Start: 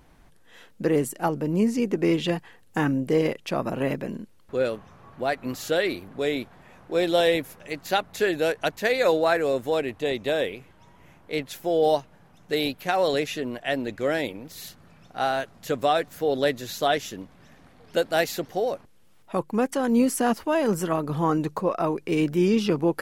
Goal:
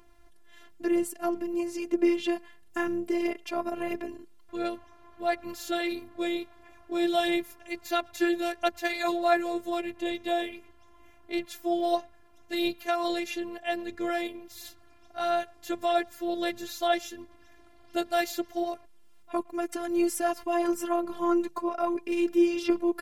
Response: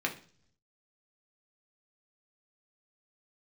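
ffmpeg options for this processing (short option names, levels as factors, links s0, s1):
-filter_complex "[0:a]asettb=1/sr,asplit=3[s0][s1][s2];[s0]atrim=end=19.504[s3];[s1]atrim=start=19.5:end=20.29,asetpts=PTS-STARTPTS,afade=t=in:d=0.004:c=qsin,afade=t=out:st=0.786:d=0.004:c=qsin,bandreject=f=1000:w=5.4[s4];[s2]atrim=start=20.286[s5];[s3][s4]acrossfade=d=0.004:c1=hsin:c2=qsin[s6];[s6][s5]acrossfade=d=0.004:c1=qsin:c2=hsin,asplit=2[s7][s8];[s8]adelay=110,highpass=300,lowpass=3400,asoftclip=type=hard:threshold=0.112,volume=0.0501[s9];[s7][s9]amix=inputs=2:normalize=0,aphaser=in_gain=1:out_gain=1:delay=3.2:decay=0.34:speed=1.5:type=sinusoidal,afftfilt=real='hypot(re,im)*cos(PI*b)':imag='0':win_size=512:overlap=0.75,volume=0.841"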